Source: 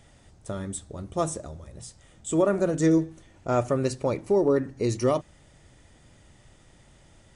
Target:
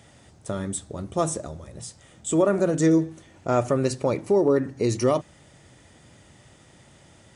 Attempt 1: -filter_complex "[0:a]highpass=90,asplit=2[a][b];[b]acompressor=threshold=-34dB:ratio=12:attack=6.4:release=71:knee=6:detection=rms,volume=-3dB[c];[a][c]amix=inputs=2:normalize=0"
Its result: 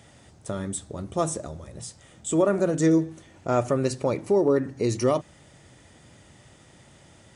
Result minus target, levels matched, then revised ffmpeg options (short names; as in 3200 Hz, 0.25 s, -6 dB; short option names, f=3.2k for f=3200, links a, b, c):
compressor: peak gain reduction +7 dB
-filter_complex "[0:a]highpass=90,asplit=2[a][b];[b]acompressor=threshold=-26.5dB:ratio=12:attack=6.4:release=71:knee=6:detection=rms,volume=-3dB[c];[a][c]amix=inputs=2:normalize=0"